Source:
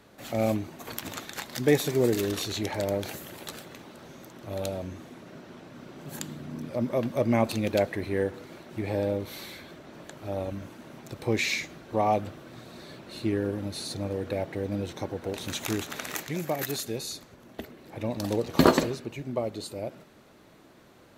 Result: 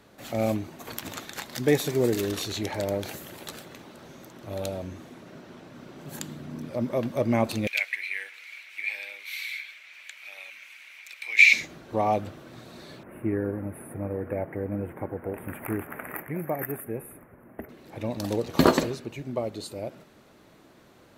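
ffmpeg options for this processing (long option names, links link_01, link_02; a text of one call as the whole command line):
ffmpeg -i in.wav -filter_complex "[0:a]asettb=1/sr,asplit=3[link_01][link_02][link_03];[link_01]atrim=end=7.674[link_04];[link_02]atrim=start=7.67:end=11.53,asetpts=PTS-STARTPTS,afade=type=in:duration=0.004:curve=qsin,afade=type=out:start_time=3.856:duration=0.004:curve=qsin,highpass=frequency=2300:width_type=q:width=7.1[link_05];[link_03]atrim=start=11.526[link_06];[link_04][link_05]acrossfade=duration=0.004:curve1=hsin:curve2=qsin[link_07];[link_07][link_06]acrossfade=duration=0.004:curve1=qsin:curve2=hsin,asettb=1/sr,asplit=3[link_08][link_09][link_10];[link_08]atrim=end=13.034[link_11];[link_09]atrim=start=13.03:end=17.69,asetpts=PTS-STARTPTS,afade=type=in:duration=0.004:curve=qsin,afade=type=out:start_time=4.656:duration=0.004:curve=qsin,asuperstop=centerf=5000:order=8:qfactor=0.62[link_12];[link_10]atrim=start=17.686[link_13];[link_11][link_12]acrossfade=duration=0.004:curve1=hsin:curve2=qsin[link_14];[link_14][link_13]acrossfade=duration=0.004:curve1=qsin:curve2=hsin" out.wav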